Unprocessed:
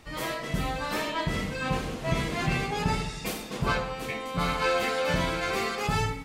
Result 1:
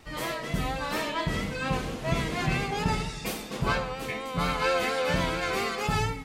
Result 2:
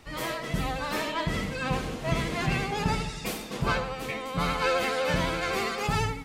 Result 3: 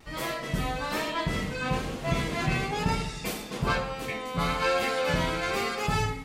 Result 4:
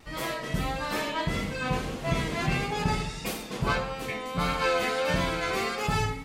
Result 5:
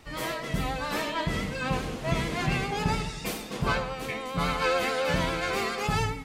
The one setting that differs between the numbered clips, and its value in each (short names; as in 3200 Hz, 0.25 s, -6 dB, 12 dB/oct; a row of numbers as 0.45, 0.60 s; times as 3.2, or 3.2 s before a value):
vibrato, rate: 4.3, 12, 1.1, 1.6, 7.2 Hz